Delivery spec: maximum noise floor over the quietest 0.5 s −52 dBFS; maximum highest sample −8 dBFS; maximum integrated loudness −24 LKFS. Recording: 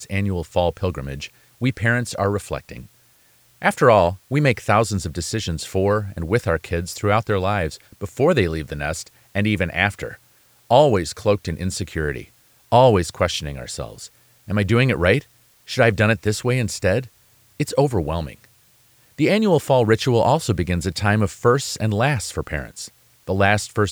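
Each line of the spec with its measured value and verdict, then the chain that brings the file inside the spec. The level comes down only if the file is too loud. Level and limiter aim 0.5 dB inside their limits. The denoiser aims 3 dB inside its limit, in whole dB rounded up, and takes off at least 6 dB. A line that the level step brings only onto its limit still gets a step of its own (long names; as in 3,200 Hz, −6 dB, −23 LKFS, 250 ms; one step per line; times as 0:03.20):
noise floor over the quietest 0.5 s −56 dBFS: in spec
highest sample −2.5 dBFS: out of spec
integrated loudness −20.5 LKFS: out of spec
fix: level −4 dB
brickwall limiter −8.5 dBFS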